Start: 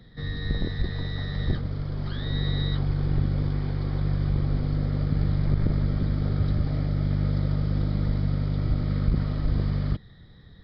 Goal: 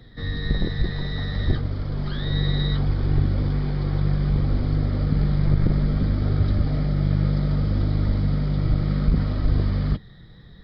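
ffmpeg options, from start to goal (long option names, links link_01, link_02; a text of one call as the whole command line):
ffmpeg -i in.wav -af "flanger=delay=2.5:depth=3.9:regen=-60:speed=0.63:shape=triangular,volume=8dB" out.wav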